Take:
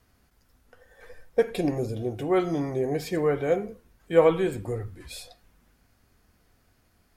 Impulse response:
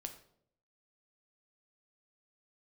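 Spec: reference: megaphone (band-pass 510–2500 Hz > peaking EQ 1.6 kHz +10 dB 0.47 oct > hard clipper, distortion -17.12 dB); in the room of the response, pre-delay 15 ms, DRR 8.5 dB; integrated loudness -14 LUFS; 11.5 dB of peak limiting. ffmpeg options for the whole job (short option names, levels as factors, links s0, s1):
-filter_complex "[0:a]alimiter=limit=0.119:level=0:latency=1,asplit=2[s0][s1];[1:a]atrim=start_sample=2205,adelay=15[s2];[s1][s2]afir=irnorm=-1:irlink=0,volume=0.531[s3];[s0][s3]amix=inputs=2:normalize=0,highpass=510,lowpass=2500,equalizer=f=1600:t=o:w=0.47:g=10,asoftclip=type=hard:threshold=0.0596,volume=9.44"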